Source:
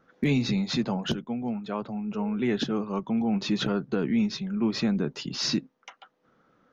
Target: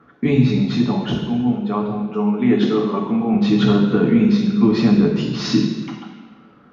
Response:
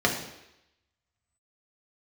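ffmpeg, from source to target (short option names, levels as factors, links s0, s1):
-filter_complex "[1:a]atrim=start_sample=2205,asetrate=26460,aresample=44100[s0];[0:a][s0]afir=irnorm=-1:irlink=0,dynaudnorm=f=240:g=9:m=3.76,asettb=1/sr,asplit=3[s1][s2][s3];[s1]atrim=end=2.104[s4];[s2]atrim=start=2.1:end=3.34,asetpts=PTS-STARTPTS,afade=t=in:d=0.004:c=qsin,afade=t=out:st=1.236:d=0.004:c=qsin,highpass=160[s5];[s3]atrim=start=3.336[s6];[s4][s5]acrossfade=d=0.004:c1=hsin:c2=qsin[s7];[s7][s6]acrossfade=d=0.004:c1=qsin:c2=hsin,volume=0.708"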